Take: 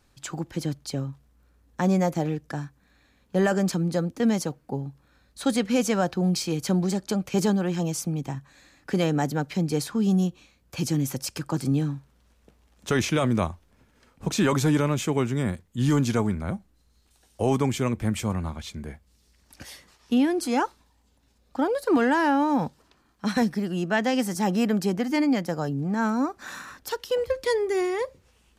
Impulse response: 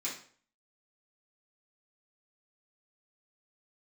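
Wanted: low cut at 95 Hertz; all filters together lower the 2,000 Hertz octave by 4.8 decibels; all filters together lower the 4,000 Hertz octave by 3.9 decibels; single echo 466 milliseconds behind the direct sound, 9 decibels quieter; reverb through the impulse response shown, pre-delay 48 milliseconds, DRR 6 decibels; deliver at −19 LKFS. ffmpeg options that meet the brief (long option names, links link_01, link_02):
-filter_complex "[0:a]highpass=95,equalizer=frequency=2000:width_type=o:gain=-5.5,equalizer=frequency=4000:width_type=o:gain=-3.5,aecho=1:1:466:0.355,asplit=2[link_01][link_02];[1:a]atrim=start_sample=2205,adelay=48[link_03];[link_02][link_03]afir=irnorm=-1:irlink=0,volume=-8.5dB[link_04];[link_01][link_04]amix=inputs=2:normalize=0,volume=6.5dB"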